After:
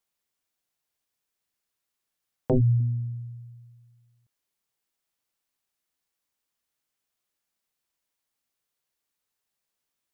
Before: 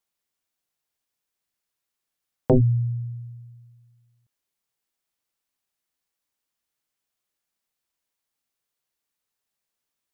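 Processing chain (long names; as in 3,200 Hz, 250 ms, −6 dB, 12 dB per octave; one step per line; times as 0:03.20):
0:02.80–0:03.37: phase distortion by the signal itself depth 0.31 ms
brickwall limiter −16.5 dBFS, peak gain reduction 6.5 dB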